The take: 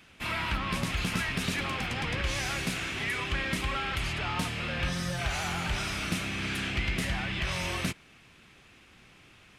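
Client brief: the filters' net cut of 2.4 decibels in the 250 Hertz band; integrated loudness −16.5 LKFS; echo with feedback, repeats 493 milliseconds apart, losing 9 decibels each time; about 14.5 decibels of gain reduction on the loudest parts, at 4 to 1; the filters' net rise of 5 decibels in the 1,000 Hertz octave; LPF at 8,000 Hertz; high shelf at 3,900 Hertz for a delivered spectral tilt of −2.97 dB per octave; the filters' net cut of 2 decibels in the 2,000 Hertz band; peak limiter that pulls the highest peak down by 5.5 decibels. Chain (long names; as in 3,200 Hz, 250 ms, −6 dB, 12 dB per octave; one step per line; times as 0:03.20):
low-pass filter 8,000 Hz
parametric band 250 Hz −4 dB
parametric band 1,000 Hz +8 dB
parametric band 2,000 Hz −7 dB
high-shelf EQ 3,900 Hz +8 dB
downward compressor 4 to 1, threshold −44 dBFS
brickwall limiter −35.5 dBFS
repeating echo 493 ms, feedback 35%, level −9 dB
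level +28 dB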